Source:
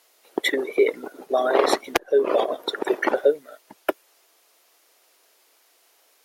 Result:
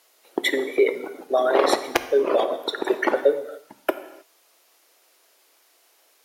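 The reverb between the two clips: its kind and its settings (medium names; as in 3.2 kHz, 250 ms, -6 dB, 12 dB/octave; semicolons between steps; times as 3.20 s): gated-style reverb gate 340 ms falling, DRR 10 dB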